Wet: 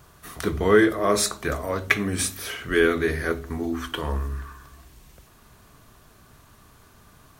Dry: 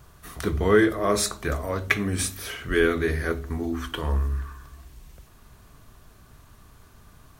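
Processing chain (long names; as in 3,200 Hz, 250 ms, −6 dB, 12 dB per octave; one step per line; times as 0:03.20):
low-shelf EQ 88 Hz −9.5 dB
level +2 dB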